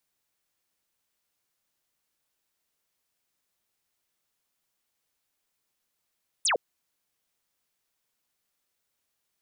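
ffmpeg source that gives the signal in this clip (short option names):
-f lavfi -i "aevalsrc='0.0841*clip(t/0.002,0,1)*clip((0.11-t)/0.002,0,1)*sin(2*PI*10000*0.11/log(400/10000)*(exp(log(400/10000)*t/0.11)-1))':d=0.11:s=44100"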